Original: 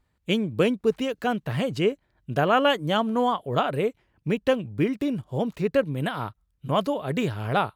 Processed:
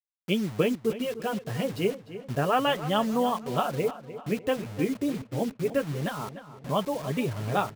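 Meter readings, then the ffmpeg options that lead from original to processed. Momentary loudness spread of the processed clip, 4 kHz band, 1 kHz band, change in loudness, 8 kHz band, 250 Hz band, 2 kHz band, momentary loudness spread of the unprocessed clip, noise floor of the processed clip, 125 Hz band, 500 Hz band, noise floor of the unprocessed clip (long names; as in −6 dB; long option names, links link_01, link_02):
7 LU, −3.5 dB, −3.0 dB, −3.5 dB, can't be measured, −3.0 dB, −5.0 dB, 7 LU, −53 dBFS, −3.0 dB, −3.5 dB, −71 dBFS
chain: -filter_complex "[0:a]bandreject=frequency=1500:width=21,afftdn=noise_reduction=14:noise_floor=-36,flanger=delay=4.4:depth=6.4:regen=-23:speed=0.31:shape=sinusoidal,acrusher=bits=6:mix=0:aa=0.000001,asplit=2[link_01][link_02];[link_02]adelay=300,lowpass=frequency=4100:poles=1,volume=-13.5dB,asplit=2[link_03][link_04];[link_04]adelay=300,lowpass=frequency=4100:poles=1,volume=0.48,asplit=2[link_05][link_06];[link_06]adelay=300,lowpass=frequency=4100:poles=1,volume=0.48,asplit=2[link_07][link_08];[link_08]adelay=300,lowpass=frequency=4100:poles=1,volume=0.48,asplit=2[link_09][link_10];[link_10]adelay=300,lowpass=frequency=4100:poles=1,volume=0.48[link_11];[link_01][link_03][link_05][link_07][link_09][link_11]amix=inputs=6:normalize=0"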